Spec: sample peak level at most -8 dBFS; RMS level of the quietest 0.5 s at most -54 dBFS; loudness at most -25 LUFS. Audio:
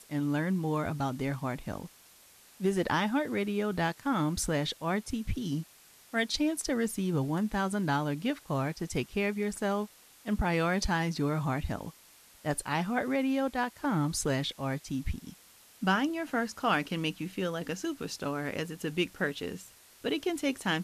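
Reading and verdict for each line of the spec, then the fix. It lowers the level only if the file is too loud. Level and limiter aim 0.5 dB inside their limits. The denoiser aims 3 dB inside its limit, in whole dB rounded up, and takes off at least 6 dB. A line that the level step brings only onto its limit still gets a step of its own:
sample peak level -14.5 dBFS: OK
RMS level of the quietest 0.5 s -58 dBFS: OK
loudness -31.5 LUFS: OK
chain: none

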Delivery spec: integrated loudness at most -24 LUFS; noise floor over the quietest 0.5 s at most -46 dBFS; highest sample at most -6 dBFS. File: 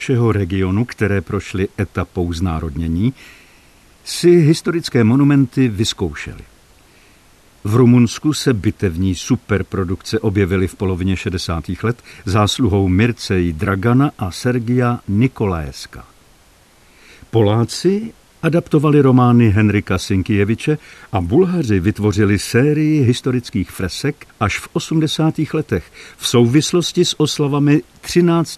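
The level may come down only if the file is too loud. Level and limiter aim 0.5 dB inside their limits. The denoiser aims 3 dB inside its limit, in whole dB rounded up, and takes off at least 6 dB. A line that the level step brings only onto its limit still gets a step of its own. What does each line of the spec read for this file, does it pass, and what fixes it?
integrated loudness -16.5 LUFS: fail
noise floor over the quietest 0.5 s -49 dBFS: OK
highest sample -2.0 dBFS: fail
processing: gain -8 dB

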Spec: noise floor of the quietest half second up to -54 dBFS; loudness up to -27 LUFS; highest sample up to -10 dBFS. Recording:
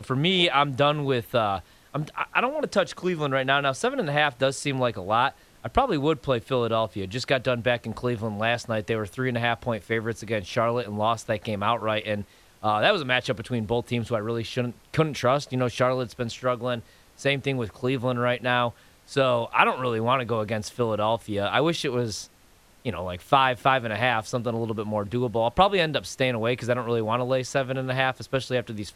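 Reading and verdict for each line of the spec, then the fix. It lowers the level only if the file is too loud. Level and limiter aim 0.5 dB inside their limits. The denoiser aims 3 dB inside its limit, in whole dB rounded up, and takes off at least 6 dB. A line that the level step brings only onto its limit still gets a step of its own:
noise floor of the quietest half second -56 dBFS: OK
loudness -25.5 LUFS: fail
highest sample -3.5 dBFS: fail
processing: gain -2 dB; limiter -10.5 dBFS

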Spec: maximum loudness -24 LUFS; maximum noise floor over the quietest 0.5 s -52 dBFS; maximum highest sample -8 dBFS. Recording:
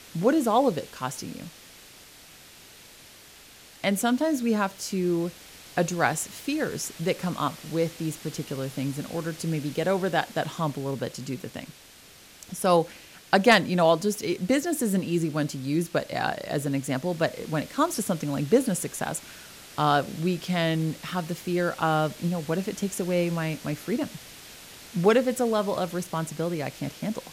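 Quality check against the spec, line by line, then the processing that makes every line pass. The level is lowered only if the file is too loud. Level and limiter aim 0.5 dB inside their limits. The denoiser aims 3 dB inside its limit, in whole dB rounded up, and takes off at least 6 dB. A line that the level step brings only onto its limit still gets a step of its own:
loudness -27.0 LUFS: OK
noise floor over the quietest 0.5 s -51 dBFS: fail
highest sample -5.5 dBFS: fail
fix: denoiser 6 dB, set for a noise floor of -51 dBFS; limiter -8.5 dBFS

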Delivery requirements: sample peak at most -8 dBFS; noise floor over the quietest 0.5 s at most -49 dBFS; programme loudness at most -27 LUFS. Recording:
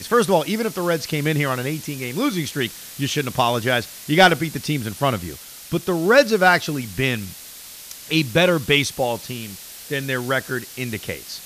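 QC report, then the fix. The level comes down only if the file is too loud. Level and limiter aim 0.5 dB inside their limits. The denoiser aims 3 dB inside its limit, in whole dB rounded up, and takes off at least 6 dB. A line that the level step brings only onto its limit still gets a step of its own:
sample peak -2.5 dBFS: fail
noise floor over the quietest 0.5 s -39 dBFS: fail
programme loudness -20.5 LUFS: fail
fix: denoiser 6 dB, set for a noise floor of -39 dBFS; gain -7 dB

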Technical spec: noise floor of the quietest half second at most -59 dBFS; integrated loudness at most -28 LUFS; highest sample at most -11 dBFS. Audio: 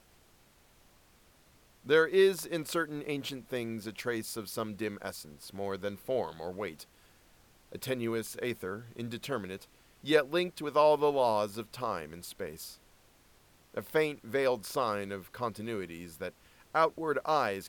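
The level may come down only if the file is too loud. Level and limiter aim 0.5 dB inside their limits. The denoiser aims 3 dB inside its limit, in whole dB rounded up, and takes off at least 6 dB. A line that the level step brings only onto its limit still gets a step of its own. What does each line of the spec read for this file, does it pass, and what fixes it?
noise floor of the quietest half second -63 dBFS: OK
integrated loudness -32.5 LUFS: OK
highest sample -12.0 dBFS: OK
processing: none

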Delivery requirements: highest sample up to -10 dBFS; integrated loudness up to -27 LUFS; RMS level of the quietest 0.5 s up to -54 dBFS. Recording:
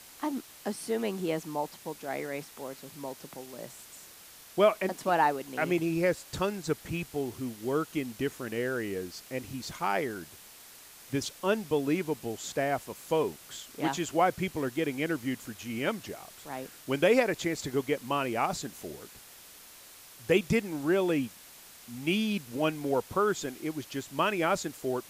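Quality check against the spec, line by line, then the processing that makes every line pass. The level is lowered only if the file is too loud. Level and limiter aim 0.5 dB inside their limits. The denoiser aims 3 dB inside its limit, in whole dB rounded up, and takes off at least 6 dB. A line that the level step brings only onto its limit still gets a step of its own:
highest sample -10.5 dBFS: OK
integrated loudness -31.0 LUFS: OK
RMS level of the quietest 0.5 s -52 dBFS: fail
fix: denoiser 6 dB, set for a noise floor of -52 dBFS

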